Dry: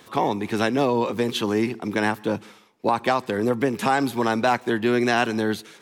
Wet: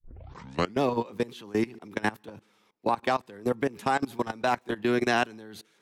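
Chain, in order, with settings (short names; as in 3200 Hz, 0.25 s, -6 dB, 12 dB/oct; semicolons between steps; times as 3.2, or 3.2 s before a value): tape start at the beginning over 0.81 s; level quantiser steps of 21 dB; gain -2.5 dB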